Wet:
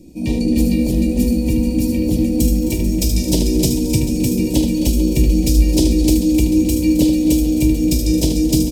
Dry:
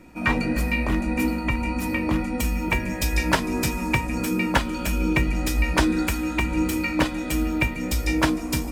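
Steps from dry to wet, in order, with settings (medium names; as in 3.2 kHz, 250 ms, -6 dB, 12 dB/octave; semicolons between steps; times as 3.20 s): Chebyshev band-stop 380–4800 Hz, order 2; multi-tap echo 46/75/220/263/301 ms -13/-6.5/-18/-13.5/-4 dB; bit-crushed delay 440 ms, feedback 35%, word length 8-bit, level -13 dB; trim +7 dB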